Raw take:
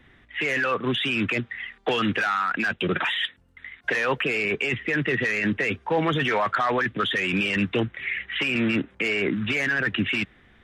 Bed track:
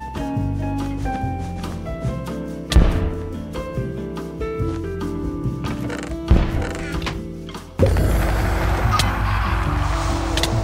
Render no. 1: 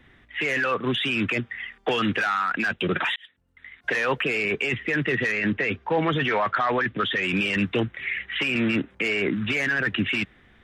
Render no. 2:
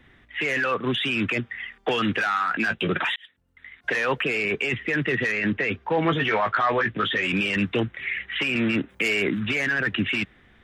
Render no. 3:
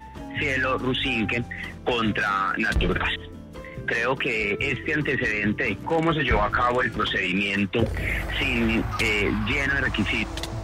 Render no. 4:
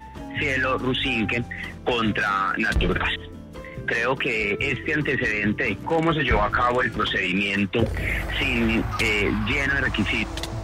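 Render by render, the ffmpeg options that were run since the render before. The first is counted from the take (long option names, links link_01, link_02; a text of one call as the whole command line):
ffmpeg -i in.wav -filter_complex "[0:a]asettb=1/sr,asplit=3[link_01][link_02][link_03];[link_01]atrim=end=1.324[link_04];[link_02]atrim=start=1.32:end=1.98,asetpts=PTS-STARTPTS,afade=type=in:duration=0.004:curve=qsin,afade=type=out:start_time=0.656:duration=0.004:curve=qsin,bandreject=frequency=4000:width=7.8[link_05];[link_03]atrim=start=1.976[link_06];[link_04][link_05]acrossfade=duration=0.004:curve1=hsin:curve2=qsin[link_07];[link_07][link_06]acrossfade=duration=0.004:curve1=qsin:curve2=hsin,asettb=1/sr,asplit=3[link_08][link_09][link_10];[link_08]atrim=end=5.324[link_11];[link_09]atrim=start=5.32:end=7.23,asetpts=PTS-STARTPTS,afade=type=in:duration=0.004:curve=qsin,afade=type=out:start_time=1.906:duration=0.004:curve=qsin,lowpass=4400[link_12];[link_10]atrim=start=7.226[link_13];[link_11][link_12]acrossfade=duration=0.004:curve1=hsin:curve2=qsin[link_14];[link_14][link_13]acrossfade=duration=0.004:curve1=qsin:curve2=hsin,asplit=2[link_15][link_16];[link_15]atrim=end=3.16,asetpts=PTS-STARTPTS,afade=type=out:start_time=3.156:duration=0.004:curve=hsin[link_17];[link_16]atrim=start=3.16,asetpts=PTS-STARTPTS,afade=type=in:duration=0.8[link_18];[link_17][link_18]concat=n=2:v=0:a=1" out.wav
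ffmpeg -i in.wav -filter_complex "[0:a]asettb=1/sr,asplit=3[link_01][link_02][link_03];[link_01]atrim=end=2.324[link_04];[link_02]atrim=start=2.32:end=2.91,asetpts=PTS-STARTPTS,afade=type=in:duration=0.004:curve=qsin,afade=type=out:start_time=0.586:duration=0.004:curve=qsin,asplit=2[link_05][link_06];[link_06]adelay=18,volume=-8dB[link_07];[link_05][link_07]amix=inputs=2:normalize=0,atrim=end_sample=26019[link_08];[link_03]atrim=start=2.906[link_09];[link_04][link_08]acrossfade=duration=0.004:curve1=hsin:curve2=qsin[link_10];[link_10][link_09]acrossfade=duration=0.004:curve1=qsin:curve2=hsin,asettb=1/sr,asplit=3[link_11][link_12][link_13];[link_11]atrim=end=6.034[link_14];[link_12]atrim=start=6.03:end=7.32,asetpts=PTS-STARTPTS,afade=type=in:duration=0.004:curve=qsin,afade=type=out:start_time=1.286:duration=0.004:curve=qsin,asplit=2[link_15][link_16];[link_16]adelay=18,volume=-7dB[link_17];[link_15][link_17]amix=inputs=2:normalize=0,atrim=end_sample=56889[link_18];[link_13]atrim=start=7.316[link_19];[link_14][link_18]acrossfade=duration=0.004:curve1=hsin:curve2=qsin[link_20];[link_20][link_19]acrossfade=duration=0.004:curve1=qsin:curve2=hsin,asettb=1/sr,asplit=3[link_21][link_22][link_23];[link_21]atrim=end=8.894[link_24];[link_22]atrim=start=8.89:end=9.4,asetpts=PTS-STARTPTS,afade=type=in:duration=0.004:curve=qsin,afade=type=out:start_time=0.506:duration=0.004:curve=qsin,aemphasis=mode=production:type=50kf[link_25];[link_23]atrim=start=9.396[link_26];[link_24][link_25]acrossfade=duration=0.004:curve1=hsin:curve2=qsin[link_27];[link_27][link_26]acrossfade=duration=0.004:curve1=qsin:curve2=hsin" out.wav
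ffmpeg -i in.wav -i bed.wav -filter_complex "[1:a]volume=-11.5dB[link_01];[0:a][link_01]amix=inputs=2:normalize=0" out.wav
ffmpeg -i in.wav -af "volume=1dB" out.wav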